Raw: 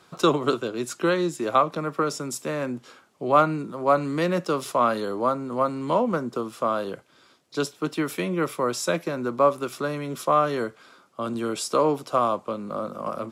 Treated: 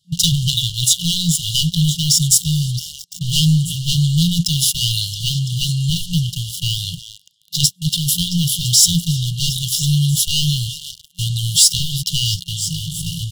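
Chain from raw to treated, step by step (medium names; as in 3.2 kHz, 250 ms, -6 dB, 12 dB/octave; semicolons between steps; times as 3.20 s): repeats whose band climbs or falls 336 ms, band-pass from 2.5 kHz, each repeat 0.7 oct, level -6.5 dB; waveshaping leveller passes 5; FFT band-reject 180–2800 Hz; trim +4 dB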